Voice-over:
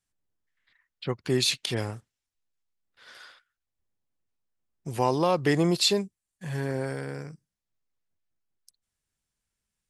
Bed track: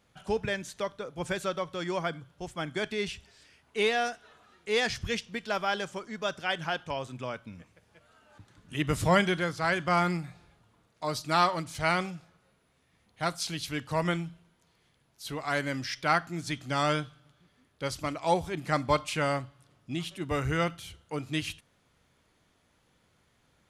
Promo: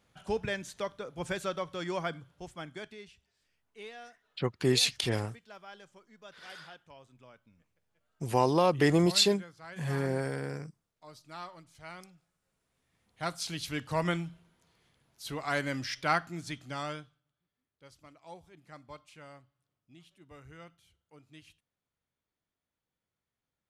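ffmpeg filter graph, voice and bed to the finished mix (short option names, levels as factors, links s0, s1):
-filter_complex "[0:a]adelay=3350,volume=0.891[s0];[1:a]volume=5.96,afade=t=out:st=2.12:d=0.94:silence=0.141254,afade=t=in:st=12.35:d=1.33:silence=0.125893,afade=t=out:st=15.99:d=1.24:silence=0.0891251[s1];[s0][s1]amix=inputs=2:normalize=0"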